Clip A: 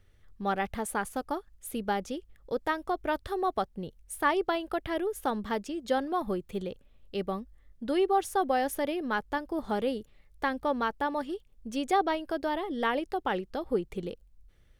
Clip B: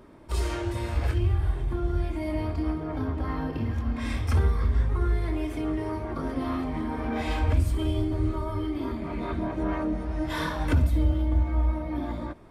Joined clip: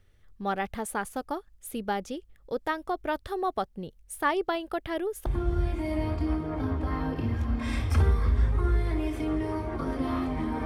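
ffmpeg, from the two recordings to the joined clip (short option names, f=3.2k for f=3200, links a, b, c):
-filter_complex "[0:a]apad=whole_dur=10.65,atrim=end=10.65,atrim=end=5.262[a];[1:a]atrim=start=1.628:end=7.02[b];[a][b]acrossfade=d=0.004:c1=hsin:c2=hsin"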